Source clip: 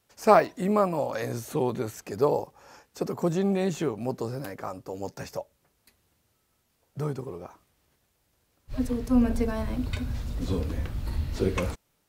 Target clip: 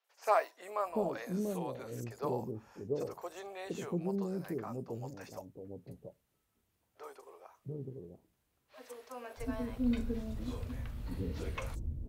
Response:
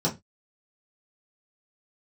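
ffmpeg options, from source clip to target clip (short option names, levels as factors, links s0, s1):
-filter_complex "[0:a]acrossover=split=510|5400[s0][s1][s2];[s2]adelay=40[s3];[s0]adelay=690[s4];[s4][s1][s3]amix=inputs=3:normalize=0,asplit=2[s5][s6];[1:a]atrim=start_sample=2205[s7];[s6][s7]afir=irnorm=-1:irlink=0,volume=0.0335[s8];[s5][s8]amix=inputs=2:normalize=0,volume=0.376"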